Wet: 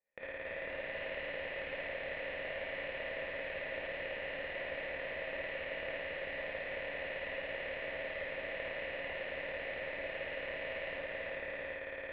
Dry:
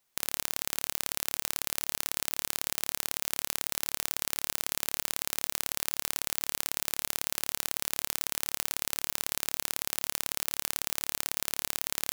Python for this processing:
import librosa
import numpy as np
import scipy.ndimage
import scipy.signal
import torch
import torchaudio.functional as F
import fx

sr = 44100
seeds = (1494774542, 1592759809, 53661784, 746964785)

y = fx.level_steps(x, sr, step_db=12)
y = fx.formant_cascade(y, sr, vowel='e')
y = fx.echo_pitch(y, sr, ms=247, semitones=1, count=3, db_per_echo=-3.0)
y = fx.rev_gated(y, sr, seeds[0], gate_ms=100, shape='rising', drr_db=-5.5)
y = y * 10.0 ** (9.5 / 20.0)